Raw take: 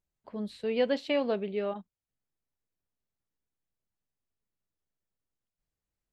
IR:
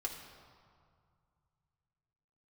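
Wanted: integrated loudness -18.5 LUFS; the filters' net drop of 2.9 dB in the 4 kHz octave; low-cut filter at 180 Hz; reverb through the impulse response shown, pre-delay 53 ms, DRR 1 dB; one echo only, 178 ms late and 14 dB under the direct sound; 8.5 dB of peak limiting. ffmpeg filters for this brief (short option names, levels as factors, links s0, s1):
-filter_complex "[0:a]highpass=180,equalizer=f=4000:t=o:g=-4.5,alimiter=level_in=1.12:limit=0.0631:level=0:latency=1,volume=0.891,aecho=1:1:178:0.2,asplit=2[s0][s1];[1:a]atrim=start_sample=2205,adelay=53[s2];[s1][s2]afir=irnorm=-1:irlink=0,volume=0.841[s3];[s0][s3]amix=inputs=2:normalize=0,volume=5.62"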